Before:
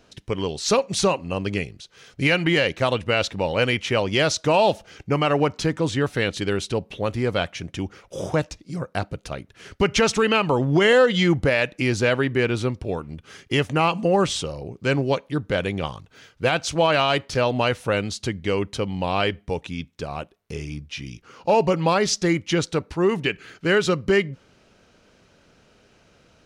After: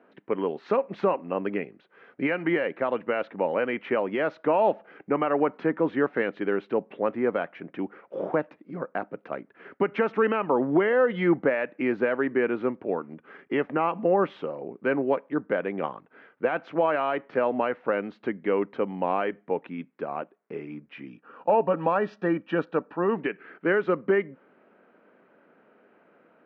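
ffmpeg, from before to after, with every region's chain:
ffmpeg -i in.wav -filter_complex "[0:a]asettb=1/sr,asplit=3[link_01][link_02][link_03];[link_01]atrim=end=21.084[link_04];[link_02]atrim=start=21.08:end=23.16,asetpts=PTS-STARTPTS,afade=type=in:duration=0.004:curve=qsin,afade=type=out:start_time=2.076:duration=0.004:curve=qsin,asuperstop=centerf=2100:order=8:qfactor=6.3,equalizer=frequency=370:width=7.8:gain=-10[link_05];[link_03]atrim=start=23.156[link_06];[link_04][link_05]acrossfade=duration=0.004:curve1=hsin:curve2=qsin[link_07];[link_07][link_06]acrossfade=duration=0.004:curve1=qsin:curve2=hsin,highpass=frequency=220:width=0.5412,highpass=frequency=220:width=1.3066,alimiter=limit=-12dB:level=0:latency=1:release=269,lowpass=frequency=1900:width=0.5412,lowpass=frequency=1900:width=1.3066" out.wav

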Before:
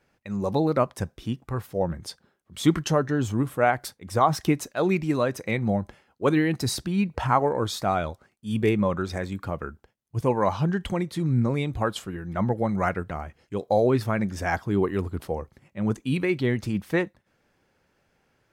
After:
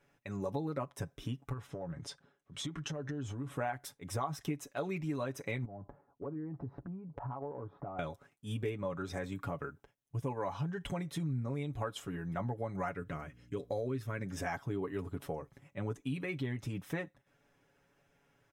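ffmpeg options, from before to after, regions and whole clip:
ffmpeg -i in.wav -filter_complex "[0:a]asettb=1/sr,asplit=3[link_01][link_02][link_03];[link_01]atrim=end=1.534[link_04];[link_02]atrim=start=1.53:end=3.56,asetpts=PTS-STARTPTS,afade=type=in:duration=0.004:curve=qsin,afade=type=out:start_time=2.026:duration=0.004:curve=qsin,lowpass=6900,acompressor=threshold=-32dB:ratio=10:attack=3.2:release=140:knee=1:detection=peak[link_05];[link_03]atrim=start=3.556[link_06];[link_04][link_05]acrossfade=duration=0.004:curve1=hsin:curve2=qsin[link_07];[link_07][link_06]acrossfade=duration=0.004:curve1=qsin:curve2=hsin,asettb=1/sr,asplit=3[link_08][link_09][link_10];[link_08]atrim=end=5.654[link_11];[link_09]atrim=start=5.65:end=7.99,asetpts=PTS-STARTPTS,afade=type=in:duration=0.004:curve=qsin,afade=type=out:start_time=2.336:duration=0.004:curve=qsin,lowpass=frequency=1100:width=0.5412,lowpass=frequency=1100:width=1.3066,acompressor=threshold=-35dB:ratio=8:attack=3.2:release=140:knee=1:detection=peak[link_12];[link_10]atrim=start=7.986[link_13];[link_11][link_12]acrossfade=duration=0.004:curve1=hsin:curve2=qsin[link_14];[link_14][link_13]acrossfade=duration=0.004:curve1=qsin:curve2=hsin,asettb=1/sr,asplit=3[link_15][link_16][link_17];[link_15]atrim=end=12.964[link_18];[link_16]atrim=start=12.96:end=14.26,asetpts=PTS-STARTPTS,afade=type=in:duration=0.004:curve=qsin,afade=type=out:start_time=1.296:duration=0.004:curve=qsin,equalizer=frequency=800:width=2.5:gain=-11.5,aeval=exprs='val(0)+0.00224*(sin(2*PI*60*n/s)+sin(2*PI*2*60*n/s)/2+sin(2*PI*3*60*n/s)/3+sin(2*PI*4*60*n/s)/4+sin(2*PI*5*60*n/s)/5)':channel_layout=same[link_19];[link_17]atrim=start=14.256[link_20];[link_18][link_19]acrossfade=duration=0.004:curve1=hsin:curve2=qsin[link_21];[link_21][link_20]acrossfade=duration=0.004:curve1=qsin:curve2=hsin,bandreject=frequency=4500:width=5.9,aecho=1:1:7.1:0.71,acompressor=threshold=-30dB:ratio=4,volume=-5dB" out.wav

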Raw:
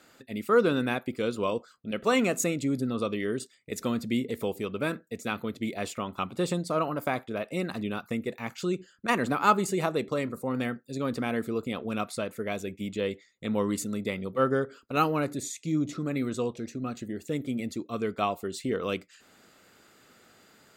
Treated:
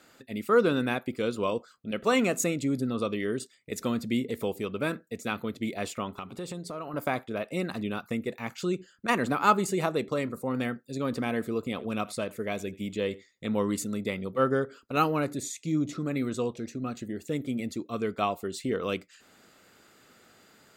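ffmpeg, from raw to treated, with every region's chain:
ffmpeg -i in.wav -filter_complex "[0:a]asettb=1/sr,asplit=3[link_01][link_02][link_03];[link_01]atrim=end=6.114[link_04];[link_02]atrim=start=6.11:end=6.94,asetpts=PTS-STARTPTS,afade=type=in:duration=0.004:curve=qsin,afade=type=out:start_time=0.826:duration=0.004:curve=qsin,acompressor=threshold=-36dB:ratio=3:attack=3.2:release=140:knee=1:detection=peak,aeval=exprs='val(0)+0.00141*sin(2*PI*410*n/s)':channel_layout=same[link_05];[link_03]atrim=start=6.936[link_06];[link_04][link_05]acrossfade=duration=0.004:curve1=hsin:curve2=qsin[link_07];[link_07][link_06]acrossfade=duration=0.004:curve1=qsin:curve2=hsin,asettb=1/sr,asplit=3[link_08][link_09][link_10];[link_08]atrim=end=11.044[link_11];[link_09]atrim=start=11.04:end=13.45,asetpts=PTS-STARTPTS,afade=type=in:duration=0.004:curve=qsin,afade=type=out:start_time=2.406:duration=0.004:curve=qsin,bandreject=frequency=1400:width=18,aecho=1:1:83:0.0794,atrim=end_sample=106281[link_12];[link_10]atrim=start=13.446[link_13];[link_11][link_12]acrossfade=duration=0.004:curve1=hsin:curve2=qsin[link_14];[link_14][link_13]acrossfade=duration=0.004:curve1=qsin:curve2=hsin" out.wav

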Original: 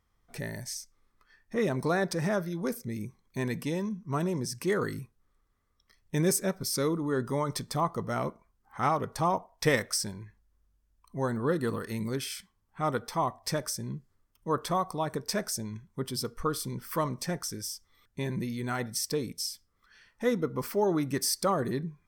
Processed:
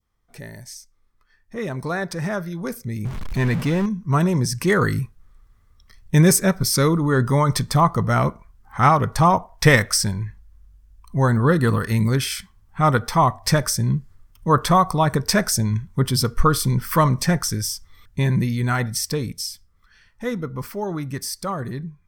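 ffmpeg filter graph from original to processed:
ffmpeg -i in.wav -filter_complex "[0:a]asettb=1/sr,asplit=3[link_01][link_02][link_03];[link_01]atrim=end=3.054[link_04];[link_02]atrim=start=3.05:end=3.86,asetpts=PTS-STARTPTS,afade=type=in:duration=0.004:curve=qsin,afade=type=out:start_time=0.806:duration=0.004:curve=qsin,aeval=exprs='val(0)+0.5*0.0178*sgn(val(0))':channel_layout=same,aemphasis=mode=reproduction:type=cd[link_05];[link_03]atrim=start=3.856[link_06];[link_04][link_05]acrossfade=duration=0.004:curve1=hsin:curve2=qsin[link_07];[link_07][link_06]acrossfade=duration=0.004:curve1=qsin:curve2=hsin,asubboost=boost=3.5:cutoff=160,dynaudnorm=framelen=340:gausssize=21:maxgain=13.5dB,adynamicequalizer=threshold=0.0178:dfrequency=1500:dqfactor=0.82:tfrequency=1500:tqfactor=0.82:attack=5:release=100:ratio=0.375:range=2:mode=boostabove:tftype=bell,volume=-1dB" out.wav

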